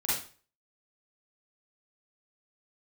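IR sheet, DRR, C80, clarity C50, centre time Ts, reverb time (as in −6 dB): −9.0 dB, 6.5 dB, −0.5 dB, 57 ms, 0.40 s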